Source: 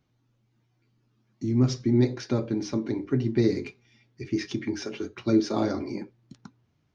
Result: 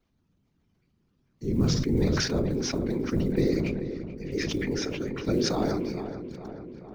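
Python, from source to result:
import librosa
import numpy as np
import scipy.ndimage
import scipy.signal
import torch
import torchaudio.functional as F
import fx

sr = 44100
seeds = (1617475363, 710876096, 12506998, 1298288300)

p1 = fx.block_float(x, sr, bits=7)
p2 = fx.low_shelf(p1, sr, hz=61.0, db=9.5)
p3 = fx.level_steps(p2, sr, step_db=15)
p4 = p2 + (p3 * 10.0 ** (-0.5 / 20.0))
p5 = fx.whisperise(p4, sr, seeds[0])
p6 = p5 + fx.echo_filtered(p5, sr, ms=435, feedback_pct=65, hz=2900.0, wet_db=-10.5, dry=0)
p7 = fx.sustainer(p6, sr, db_per_s=24.0)
y = p7 * 10.0 ** (-6.5 / 20.0)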